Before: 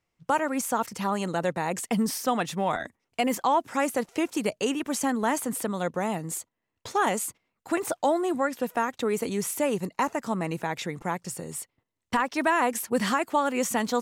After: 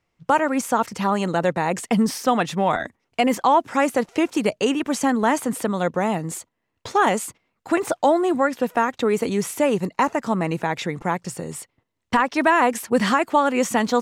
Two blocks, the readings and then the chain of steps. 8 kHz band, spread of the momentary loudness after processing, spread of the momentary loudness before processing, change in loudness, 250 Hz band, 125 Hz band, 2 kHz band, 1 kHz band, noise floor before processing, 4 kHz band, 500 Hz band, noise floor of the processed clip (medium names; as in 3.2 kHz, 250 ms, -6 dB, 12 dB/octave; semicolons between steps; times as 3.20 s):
+1.0 dB, 8 LU, 7 LU, +6.0 dB, +6.5 dB, +6.5 dB, +6.0 dB, +6.5 dB, -82 dBFS, +5.0 dB, +6.5 dB, -75 dBFS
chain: treble shelf 8.2 kHz -11.5 dB; trim +6.5 dB